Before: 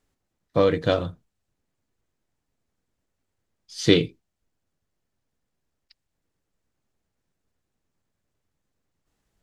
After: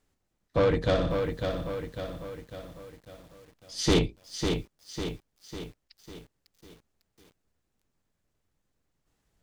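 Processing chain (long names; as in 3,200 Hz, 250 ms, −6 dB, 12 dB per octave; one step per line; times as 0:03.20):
sub-octave generator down 2 octaves, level −3 dB
soft clipping −17.5 dBFS, distortion −8 dB
0:00.78–0:03.99: flutter between parallel walls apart 10.2 metres, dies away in 0.55 s
feedback echo at a low word length 550 ms, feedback 55%, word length 9 bits, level −5.5 dB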